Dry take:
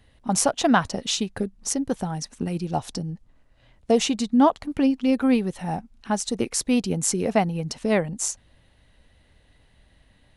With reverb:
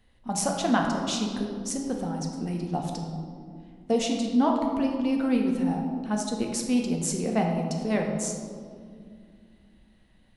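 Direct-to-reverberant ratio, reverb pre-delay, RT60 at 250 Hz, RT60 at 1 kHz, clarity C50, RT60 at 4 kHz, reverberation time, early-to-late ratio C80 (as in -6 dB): 1.0 dB, 3 ms, 3.5 s, 1.9 s, 3.5 dB, 1.1 s, 2.2 s, 5.0 dB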